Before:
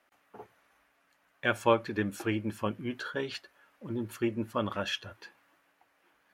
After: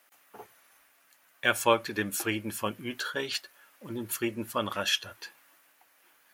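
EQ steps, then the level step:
RIAA equalisation recording
low-shelf EQ 130 Hz +11.5 dB
+2.0 dB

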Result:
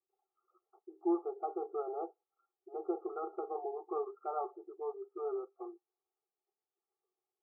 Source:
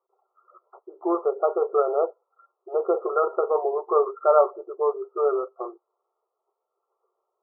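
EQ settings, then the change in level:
dynamic equaliser 800 Hz, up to +6 dB, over −38 dBFS, Q 2.5
formant filter u
Butterworth band-reject 960 Hz, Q 2.6
+2.5 dB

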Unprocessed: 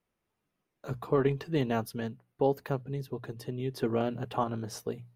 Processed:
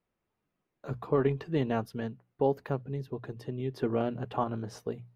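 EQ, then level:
low-pass filter 2,700 Hz 6 dB per octave
0.0 dB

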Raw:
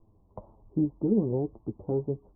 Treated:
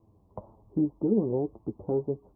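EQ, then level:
high-pass filter 60 Hz
dynamic equaliser 130 Hz, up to −6 dB, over −40 dBFS, Q 0.78
+2.5 dB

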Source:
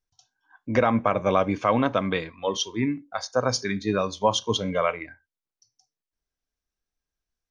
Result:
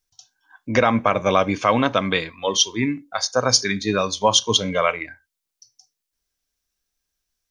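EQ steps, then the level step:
high-shelf EQ 2,400 Hz +11 dB
+2.5 dB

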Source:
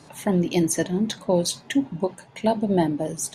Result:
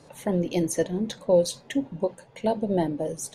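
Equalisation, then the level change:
low-shelf EQ 61 Hz +11 dB
parametric band 510 Hz +11 dB 0.42 octaves
−6.0 dB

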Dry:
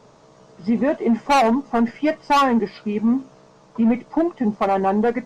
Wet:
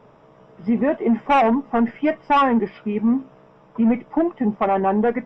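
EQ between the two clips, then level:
Savitzky-Golay smoothing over 25 samples
0.0 dB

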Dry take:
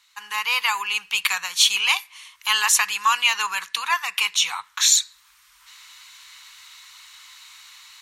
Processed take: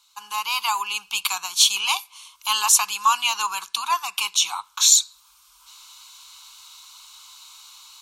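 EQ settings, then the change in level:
phaser with its sweep stopped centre 500 Hz, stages 6
+3.0 dB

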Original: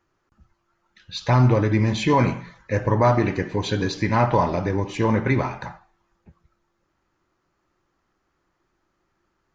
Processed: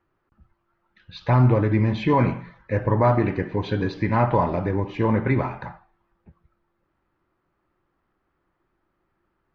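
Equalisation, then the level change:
high-frequency loss of the air 310 metres
0.0 dB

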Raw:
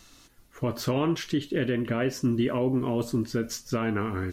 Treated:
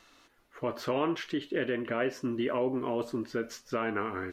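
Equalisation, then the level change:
bass and treble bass −15 dB, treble −13 dB
0.0 dB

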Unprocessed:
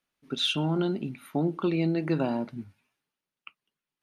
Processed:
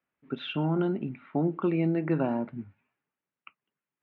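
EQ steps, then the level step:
high-pass filter 60 Hz
low-pass filter 2,400 Hz 24 dB per octave
0.0 dB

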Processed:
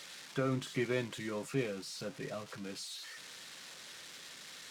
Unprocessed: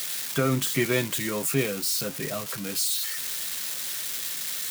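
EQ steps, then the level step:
bass and treble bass −3 dB, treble +5 dB
head-to-tape spacing loss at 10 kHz 23 dB
−7.0 dB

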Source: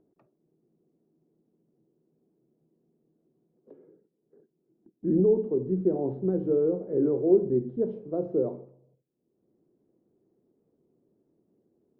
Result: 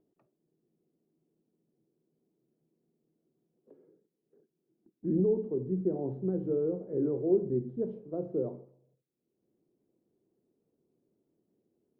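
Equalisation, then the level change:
dynamic equaliser 120 Hz, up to +5 dB, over −42 dBFS, Q 0.8
−6.5 dB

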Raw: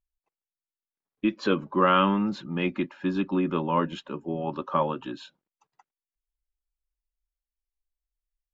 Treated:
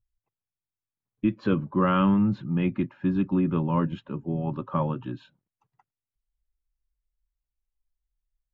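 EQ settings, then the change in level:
bass and treble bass +11 dB, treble −14 dB
parametric band 110 Hz +12.5 dB 0.59 octaves
−4.5 dB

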